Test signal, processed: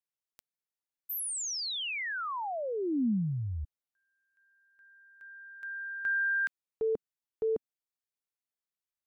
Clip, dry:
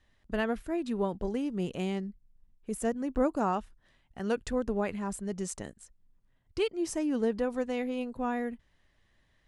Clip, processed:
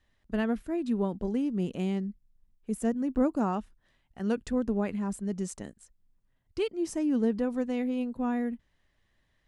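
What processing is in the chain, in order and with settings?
dynamic equaliser 230 Hz, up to +8 dB, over −46 dBFS, Q 1.2
level −3 dB

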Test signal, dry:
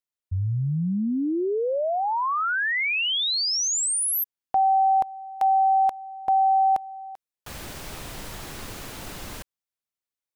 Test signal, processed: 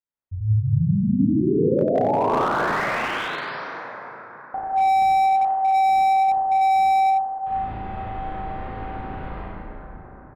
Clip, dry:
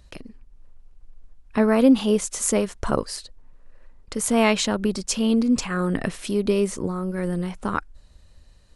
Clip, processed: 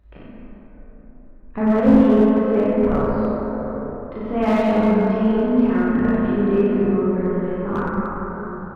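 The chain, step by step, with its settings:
Gaussian smoothing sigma 3.8 samples
double-tracking delay 36 ms −2 dB
on a send: loudspeakers that aren't time-aligned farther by 19 metres −6 dB, 32 metres −7 dB
on the sum: dense smooth reverb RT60 4.9 s, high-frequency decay 0.3×, DRR −5.5 dB
slew-rate limiting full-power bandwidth 210 Hz
level −5 dB

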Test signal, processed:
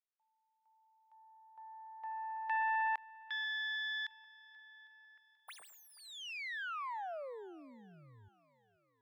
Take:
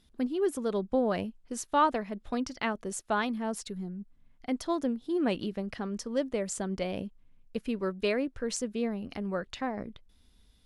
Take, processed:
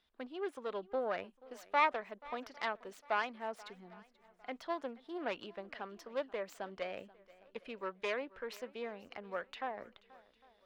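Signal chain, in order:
phase distortion by the signal itself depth 0.16 ms
three-way crossover with the lows and the highs turned down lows −19 dB, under 500 Hz, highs −19 dB, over 3,900 Hz
feedback echo with a long and a short gap by turns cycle 804 ms, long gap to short 1.5 to 1, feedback 32%, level −21.5 dB
level −2.5 dB

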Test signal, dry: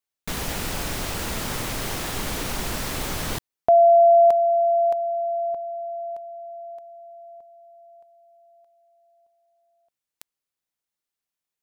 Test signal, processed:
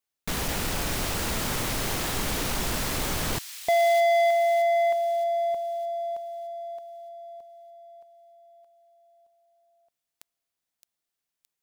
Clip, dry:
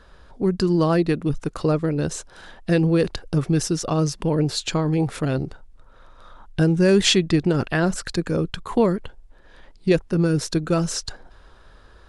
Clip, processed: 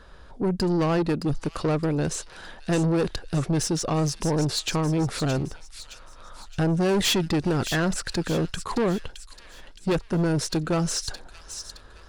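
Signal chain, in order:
soft clipping −20 dBFS
delay with a high-pass on its return 617 ms, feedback 46%, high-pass 3,000 Hz, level −7.5 dB
level +1 dB

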